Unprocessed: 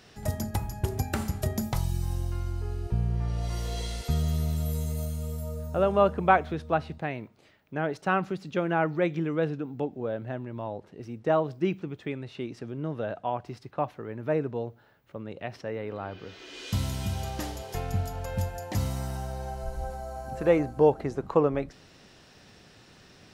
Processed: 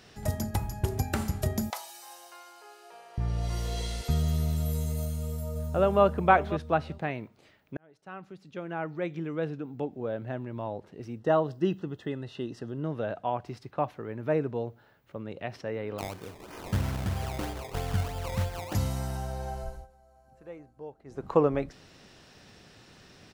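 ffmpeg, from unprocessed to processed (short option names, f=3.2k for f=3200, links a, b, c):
-filter_complex "[0:a]asettb=1/sr,asplit=3[a][b][c];[a]atrim=end=1.704[d];[b]atrim=start=1.7:end=3.18,asetpts=PTS-STARTPTS,afade=t=in:d=0.004:c=qsin,afade=t=out:st=1.476:d=0.004:c=qsin,highpass=f=590:w=0.5412,highpass=f=590:w=1.3066[e];[c]atrim=start=3.176[f];[d][e]acrossfade=d=0.004:c1=hsin:c2=qsin[g];[g][f]acrossfade=d=0.004:c1=qsin:c2=hsin,asplit=2[h][i];[i]afade=t=in:st=5.01:d=0.01,afade=t=out:st=6.02:d=0.01,aecho=0:1:540|1080:0.223872|0.0335808[j];[h][j]amix=inputs=2:normalize=0,asettb=1/sr,asplit=3[k][l][m];[k]atrim=end=11.194[n];[l]atrim=start=11.19:end=12.84,asetpts=PTS-STARTPTS,afade=t=in:d=0.004:c=qsin,afade=t=out:st=1.646:d=0.004:c=qsin,asuperstop=centerf=2300:order=12:qfactor=4.8[o];[m]atrim=start=12.836[p];[n][o]acrossfade=d=0.004:c1=hsin:c2=qsin[q];[q][p]acrossfade=d=0.004:c1=qsin:c2=hsin,asettb=1/sr,asplit=3[r][s][t];[r]atrim=end=15.984[u];[s]atrim=start=15.98:end=18.74,asetpts=PTS-STARTPTS,afade=t=in:d=0.004:c=qsin,afade=t=out:st=2.756:d=0.004:c=qsin,acrusher=samples=21:mix=1:aa=0.000001:lfo=1:lforange=21:lforate=3.1[v];[t]atrim=start=18.736[w];[u][v]acrossfade=d=0.004:c1=hsin:c2=qsin[x];[x][w]acrossfade=d=0.004:c1=qsin:c2=hsin,asplit=4[y][z][aa][ab];[y]atrim=end=7.77,asetpts=PTS-STARTPTS,afade=t=out:st=7.766:d=0.004:c=hsin[ac];[z]atrim=start=7.77:end=19.87,asetpts=PTS-STARTPTS,afade=t=in:d=2.69,afade=t=out:st=11.81:d=0.29:silence=0.0749894[ad];[aa]atrim=start=19.87:end=21.05,asetpts=PTS-STARTPTS,volume=-22.5dB[ae];[ab]atrim=start=21.05,asetpts=PTS-STARTPTS,afade=t=in:d=0.29:silence=0.0749894[af];[ac][ad][ae][af]concat=n=4:v=0:a=1"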